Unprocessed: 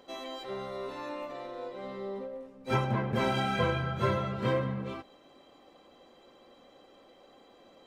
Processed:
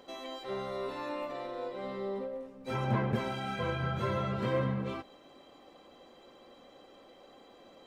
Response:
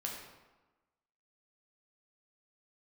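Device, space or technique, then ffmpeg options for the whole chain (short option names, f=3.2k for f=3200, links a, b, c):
de-esser from a sidechain: -filter_complex "[0:a]asettb=1/sr,asplit=3[a][b][c];[a]atrim=end=0.814[d];[b]atrim=start=0.81:end=2.32,asetpts=PTS-STARTPTS,afade=t=in:d=0.004:c=qsin,afade=t=out:st=1.506:d=0.004:c=qsin,bandreject=f=6.3k:w=9.3[e];[c]atrim=start=2.316[f];[d][e]acrossfade=d=0.004:c1=hsin:c2=qsin[g];[g][f]acrossfade=d=0.004:c1=qsin:c2=hsin,asplit=2[h][i];[i]highpass=6.3k,apad=whole_len=346948[j];[h][j]sidechaincompress=threshold=-58dB:ratio=4:attack=3.9:release=97,volume=1.5dB"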